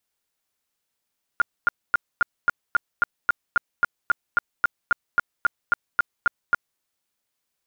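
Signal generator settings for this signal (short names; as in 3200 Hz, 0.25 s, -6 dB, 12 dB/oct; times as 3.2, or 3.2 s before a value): tone bursts 1410 Hz, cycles 23, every 0.27 s, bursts 20, -13.5 dBFS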